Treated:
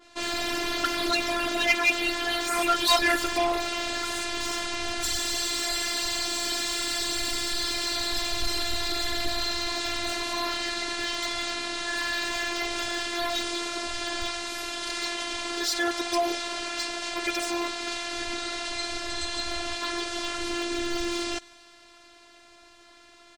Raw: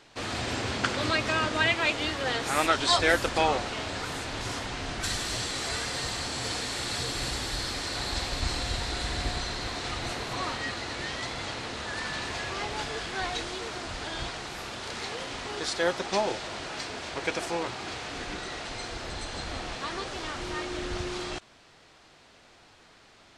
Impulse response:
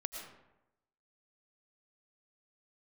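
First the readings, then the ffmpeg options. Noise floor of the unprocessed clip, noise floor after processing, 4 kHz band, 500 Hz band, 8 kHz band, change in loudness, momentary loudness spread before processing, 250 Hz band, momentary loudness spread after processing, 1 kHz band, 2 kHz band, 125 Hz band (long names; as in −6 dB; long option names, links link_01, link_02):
−56 dBFS, −54 dBFS, +4.5 dB, +0.5 dB, +5.0 dB, +3.0 dB, 11 LU, +3.5 dB, 7 LU, +1.0 dB, +2.0 dB, −11.0 dB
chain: -filter_complex "[0:a]highshelf=frequency=8600:gain=4,afftfilt=real='hypot(re,im)*cos(PI*b)':imag='0':win_size=512:overlap=0.75,asplit=2[link_01][link_02];[link_02]adelay=110.8,volume=-29dB,highshelf=frequency=4000:gain=-2.49[link_03];[link_01][link_03]amix=inputs=2:normalize=0,aeval=exprs='clip(val(0),-1,0.0708)':channel_layout=same,adynamicequalizer=threshold=0.00447:dfrequency=1800:dqfactor=0.7:tfrequency=1800:tqfactor=0.7:attack=5:release=100:ratio=0.375:range=2:mode=boostabove:tftype=highshelf,volume=5.5dB"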